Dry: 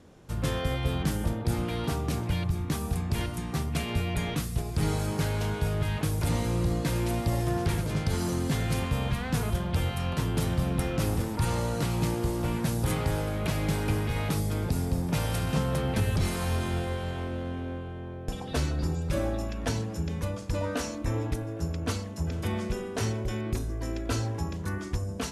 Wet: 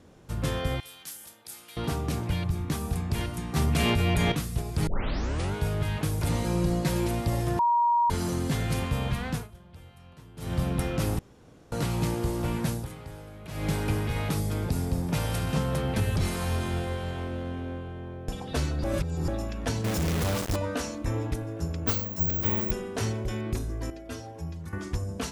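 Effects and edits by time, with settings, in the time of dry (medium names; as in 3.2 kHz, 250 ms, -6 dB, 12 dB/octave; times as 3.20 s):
0.80–1.77 s: differentiator
3.56–4.32 s: level flattener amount 100%
4.87 s: tape start 0.67 s
6.44–7.07 s: comb 5.5 ms
7.59–8.10 s: bleep 949 Hz -19.5 dBFS
9.28–10.57 s: dip -21 dB, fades 0.20 s
11.19–11.72 s: room tone
12.69–13.68 s: dip -14 dB, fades 0.20 s
18.84–19.28 s: reverse
19.84–20.56 s: companded quantiser 2-bit
21.87–22.71 s: careless resampling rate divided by 2×, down none, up zero stuff
23.90–24.73 s: inharmonic resonator 80 Hz, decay 0.26 s, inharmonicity 0.008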